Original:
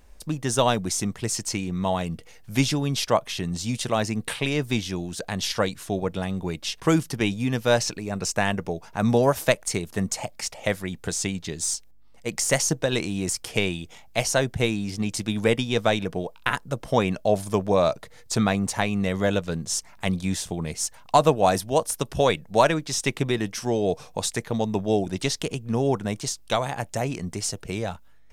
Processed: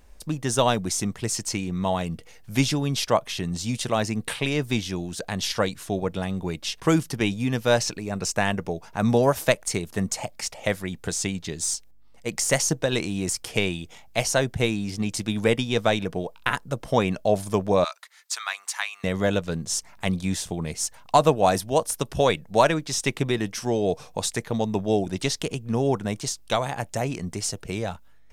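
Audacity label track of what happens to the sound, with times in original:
17.840000	19.040000	high-pass 1.1 kHz 24 dB/octave

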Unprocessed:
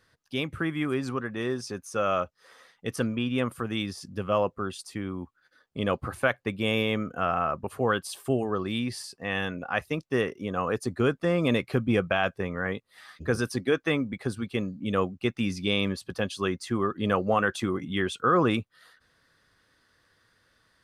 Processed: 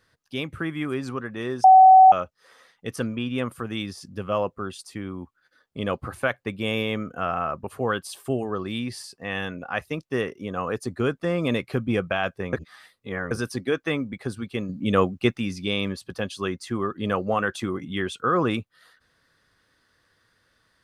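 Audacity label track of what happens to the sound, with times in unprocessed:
1.640000	2.120000	bleep 756 Hz -7.5 dBFS
12.530000	13.310000	reverse
14.690000	15.380000	gain +6 dB

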